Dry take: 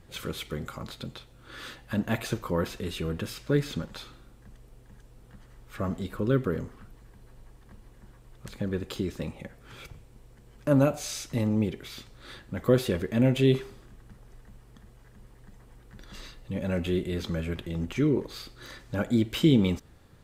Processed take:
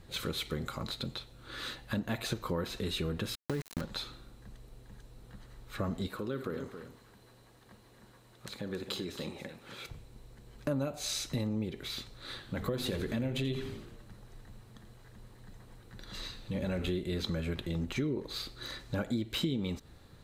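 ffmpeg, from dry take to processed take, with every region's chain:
ffmpeg -i in.wav -filter_complex "[0:a]asettb=1/sr,asplit=3[link_01][link_02][link_03];[link_01]atrim=end=3.354[link_04];[link_02]atrim=start=3.35:end=3.81,asetpts=PTS-STARTPTS,afade=type=in:duration=0.004:curve=qsin,afade=type=out:start_time=0.456:duration=0.004:curve=qsin,aeval=exprs='val(0)*gte(abs(val(0)),0.0355)':channel_layout=same,equalizer=frequency=3700:width=3.7:gain=-6.5,acompressor=threshold=-26dB:ratio=6:attack=3.2:release=140:knee=1:detection=peak[link_05];[link_03]atrim=start=3.806[link_06];[link_04][link_05]acrossfade=duration=0.004:curve1=hsin:curve2=qsin[link_07];[link_07][link_06]acrossfade=duration=0.004:curve1=qsin:curve2=hsin,asettb=1/sr,asplit=3[link_08][link_09][link_10];[link_08]atrim=end=6.084[link_11];[link_09]atrim=start=6.08:end=9.89,asetpts=PTS-STARTPTS,afade=type=in:duration=0.004:curve=qsin,afade=type=out:start_time=3.806:duration=0.004:curve=qsin,acompressor=threshold=-33dB:ratio=2:attack=3.2:release=140:knee=1:detection=peak,highpass=frequency=270:poles=1,aecho=1:1:58|273:0.188|0.316,atrim=end_sample=168021[link_12];[link_10]atrim=start=9.886[link_13];[link_11][link_12]acrossfade=duration=0.004:curve1=hsin:curve2=qsin[link_14];[link_14][link_13]acrossfade=duration=0.004:curve1=qsin:curve2=hsin,asettb=1/sr,asplit=3[link_15][link_16][link_17];[link_15]atrim=end=12.144[link_18];[link_16]atrim=start=12.14:end=16.89,asetpts=PTS-STARTPTS,afade=type=in:duration=0.004:curve=qsin,afade=type=out:start_time=4.746:duration=0.004:curve=qsin,bandreject=frequency=50:width_type=h:width=6,bandreject=frequency=100:width_type=h:width=6,bandreject=frequency=150:width_type=h:width=6,bandreject=frequency=200:width_type=h:width=6,bandreject=frequency=250:width_type=h:width=6,bandreject=frequency=300:width_type=h:width=6,bandreject=frequency=350:width_type=h:width=6,bandreject=frequency=400:width_type=h:width=6,bandreject=frequency=450:width_type=h:width=6,acompressor=threshold=-27dB:ratio=2:attack=3.2:release=140:knee=1:detection=peak,asplit=7[link_19][link_20][link_21][link_22][link_23][link_24][link_25];[link_20]adelay=85,afreqshift=-120,volume=-12dB[link_26];[link_21]adelay=170,afreqshift=-240,volume=-17.5dB[link_27];[link_22]adelay=255,afreqshift=-360,volume=-23dB[link_28];[link_23]adelay=340,afreqshift=-480,volume=-28.5dB[link_29];[link_24]adelay=425,afreqshift=-600,volume=-34.1dB[link_30];[link_25]adelay=510,afreqshift=-720,volume=-39.6dB[link_31];[link_19][link_26][link_27][link_28][link_29][link_30][link_31]amix=inputs=7:normalize=0,atrim=end_sample=209475[link_32];[link_17]atrim=start=16.886[link_33];[link_18][link_32]acrossfade=duration=0.004:curve1=hsin:curve2=qsin[link_34];[link_34][link_33]acrossfade=duration=0.004:curve1=qsin:curve2=hsin,equalizer=frequency=4000:width=7.9:gain=10.5,acompressor=threshold=-30dB:ratio=6" out.wav

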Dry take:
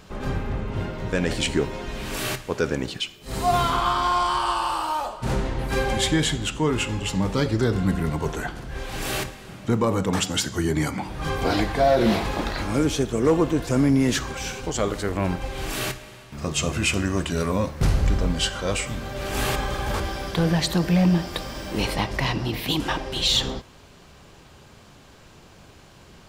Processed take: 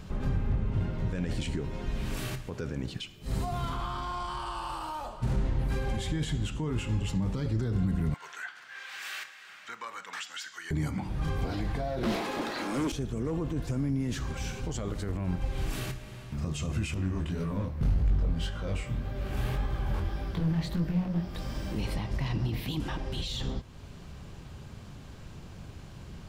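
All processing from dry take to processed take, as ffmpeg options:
ffmpeg -i in.wav -filter_complex "[0:a]asettb=1/sr,asplit=3[link_01][link_02][link_03];[link_01]atrim=end=8.144[link_04];[link_02]atrim=start=8.14:end=10.71,asetpts=PTS-STARTPTS,afade=type=in:duration=0.004:curve=qsin,afade=type=out:start_time=2.566:duration=0.004:curve=qsin,highpass=frequency=1600:width_type=q:width=1.8,equalizer=frequency=11000:width=1.5:gain=-10[link_05];[link_03]atrim=start=10.706[link_06];[link_04][link_05]acrossfade=duration=0.004:curve1=hsin:curve2=qsin[link_07];[link_07][link_06]acrossfade=duration=0.004:curve1=qsin:curve2=hsin,asettb=1/sr,asplit=3[link_08][link_09][link_10];[link_08]atrim=end=12.034[link_11];[link_09]atrim=start=12.03:end=12.92,asetpts=PTS-STARTPTS,afade=type=in:duration=0.004:curve=qsin,afade=type=out:start_time=0.886:duration=0.004:curve=qsin,highpass=frequency=270:width=0.5412,highpass=frequency=270:width=1.3066,aeval=exprs='0.316*sin(PI/2*3.16*val(0)/0.316)':channel_layout=same[link_12];[link_10]atrim=start=12.916[link_13];[link_11][link_12]acrossfade=duration=0.004:curve1=hsin:curve2=qsin[link_14];[link_14][link_13]acrossfade=duration=0.004:curve1=qsin:curve2=hsin,asettb=1/sr,asplit=3[link_15][link_16][link_17];[link_15]atrim=end=16.944[link_18];[link_16]atrim=start=16.94:end=21.35,asetpts=PTS-STARTPTS,afade=type=in:duration=0.004:curve=qsin,afade=type=out:start_time=4.406:duration=0.004:curve=qsin,equalizer=frequency=7500:width=0.73:gain=-7.5,asoftclip=type=hard:threshold=-19dB,flanger=delay=18:depth=7.3:speed=1.8[link_19];[link_17]atrim=start=21.346[link_20];[link_18][link_19]acrossfade=duration=0.004:curve1=hsin:curve2=qsin[link_21];[link_21][link_20]acrossfade=duration=0.004:curve1=qsin:curve2=hsin,acompressor=threshold=-44dB:ratio=1.5,alimiter=level_in=1.5dB:limit=-24dB:level=0:latency=1:release=21,volume=-1.5dB,bass=frequency=250:gain=11,treble=frequency=4000:gain=-1,volume=-3dB" out.wav

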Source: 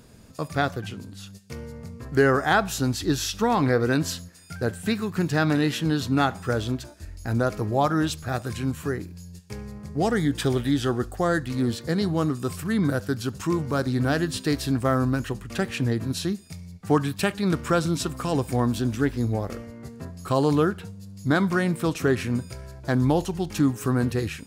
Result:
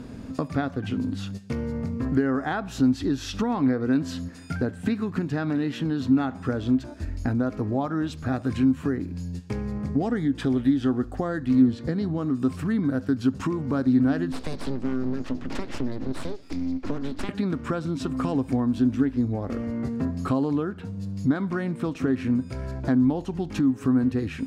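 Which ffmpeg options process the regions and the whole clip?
ffmpeg -i in.wav -filter_complex "[0:a]asettb=1/sr,asplit=3[link_01][link_02][link_03];[link_01]atrim=end=11.614[link_04];[link_02]atrim=start=11.61:end=12.18,asetpts=PTS-STARTPTS,afade=type=in:duration=0.004:curve=qsin,afade=type=out:start_time=0.566:duration=0.004:curve=qsin,acrossover=split=9300[link_05][link_06];[link_06]acompressor=threshold=-57dB:ratio=4:attack=1:release=60[link_07];[link_05][link_07]amix=inputs=2:normalize=0,lowshelf=frequency=160:gain=6[link_08];[link_03]atrim=start=12.176[link_09];[link_04][link_08]acrossfade=duration=0.004:curve1=hsin:curve2=qsin[link_10];[link_10][link_09]acrossfade=duration=0.004:curve1=qsin:curve2=hsin,asettb=1/sr,asplit=3[link_11][link_12][link_13];[link_11]atrim=end=14.324[link_14];[link_12]atrim=start=14.32:end=17.29,asetpts=PTS-STARTPTS,afade=type=in:duration=0.004:curve=qsin,afade=type=out:start_time=2.966:duration=0.004:curve=qsin,acrossover=split=240|3000[link_15][link_16][link_17];[link_16]acompressor=threshold=-38dB:ratio=2.5:attack=3.2:release=140:knee=2.83:detection=peak[link_18];[link_15][link_18][link_17]amix=inputs=3:normalize=0,lowpass=frequency=5000:width_type=q:width=1.6,aeval=exprs='abs(val(0))':channel_layout=same[link_19];[link_13]atrim=start=17.286[link_20];[link_14][link_19]acrossfade=duration=0.004:curve1=hsin:curve2=qsin[link_21];[link_21][link_20]acrossfade=duration=0.004:curve1=qsin:curve2=hsin,aemphasis=mode=reproduction:type=75fm,acompressor=threshold=-35dB:ratio=6,equalizer=frequency=260:width_type=o:width=0.27:gain=13,volume=8.5dB" out.wav

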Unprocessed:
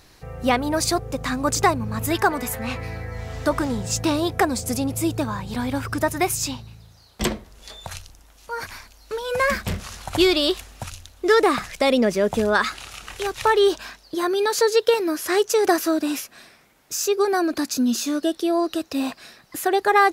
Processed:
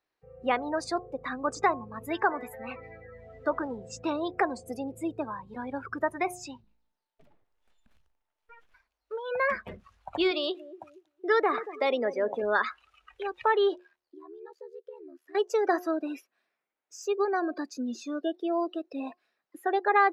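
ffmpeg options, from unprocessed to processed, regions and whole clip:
ffmpeg -i in.wav -filter_complex "[0:a]asettb=1/sr,asplit=3[link_01][link_02][link_03];[link_01]atrim=end=6.634[link_04];[link_02]atrim=start=6.63:end=8.74,asetpts=PTS-STARTPTS,afade=type=in:duration=0.004:curve=qsin,afade=type=out:start_time=2.106:duration=0.004:curve=qsin,acompressor=threshold=-31dB:ratio=12:attack=3.2:release=140:knee=1:detection=peak,aeval=exprs='abs(val(0))':channel_layout=same,aeval=exprs='val(0)+0.000562*sin(2*PI*890*n/s)':channel_layout=same[link_05];[link_03]atrim=start=8.736[link_06];[link_04][link_05]acrossfade=duration=0.004:curve1=hsin:curve2=qsin[link_07];[link_07][link_06]acrossfade=duration=0.004:curve1=qsin:curve2=hsin,asettb=1/sr,asplit=3[link_08][link_09][link_10];[link_08]atrim=end=10.314[link_11];[link_09]atrim=start=10.31:end=12.43,asetpts=PTS-STARTPTS,afade=type=in:duration=0.004:curve=qsin,afade=type=out:start_time=2.116:duration=0.004:curve=qsin,highpass=frequency=270:poles=1,asplit=2[link_12][link_13];[link_13]adelay=233,lowpass=frequency=860:poles=1,volume=-12dB,asplit=2[link_14][link_15];[link_15]adelay=233,lowpass=frequency=860:poles=1,volume=0.54,asplit=2[link_16][link_17];[link_17]adelay=233,lowpass=frequency=860:poles=1,volume=0.54,asplit=2[link_18][link_19];[link_19]adelay=233,lowpass=frequency=860:poles=1,volume=0.54,asplit=2[link_20][link_21];[link_21]adelay=233,lowpass=frequency=860:poles=1,volume=0.54,asplit=2[link_22][link_23];[link_23]adelay=233,lowpass=frequency=860:poles=1,volume=0.54[link_24];[link_12][link_14][link_16][link_18][link_20][link_22][link_24]amix=inputs=7:normalize=0,atrim=end_sample=93492[link_25];[link_10]atrim=start=12.426[link_26];[link_11][link_25]acrossfade=duration=0.004:curve1=hsin:curve2=qsin[link_27];[link_27][link_26]acrossfade=duration=0.004:curve1=qsin:curve2=hsin,asettb=1/sr,asplit=3[link_28][link_29][link_30];[link_28]atrim=end=13.794[link_31];[link_29]atrim=start=13.79:end=15.35,asetpts=PTS-STARTPTS,afade=type=in:duration=0.004:curve=qsin,afade=type=out:start_time=1.556:duration=0.004:curve=qsin,acompressor=threshold=-34dB:ratio=4:attack=3.2:release=140:knee=1:detection=peak,aeval=exprs='val(0)*sin(2*PI*38*n/s)':channel_layout=same[link_32];[link_30]atrim=start=15.346[link_33];[link_31][link_32]acrossfade=duration=0.004:curve1=hsin:curve2=qsin[link_34];[link_34][link_33]acrossfade=duration=0.004:curve1=qsin:curve2=hsin,bandreject=frequency=358.9:width_type=h:width=4,bandreject=frequency=717.8:width_type=h:width=4,bandreject=frequency=1076.7:width_type=h:width=4,afftdn=noise_reduction=23:noise_floor=-29,acrossover=split=290 3300:gain=0.141 1 0.224[link_35][link_36][link_37];[link_35][link_36][link_37]amix=inputs=3:normalize=0,volume=-5.5dB" out.wav

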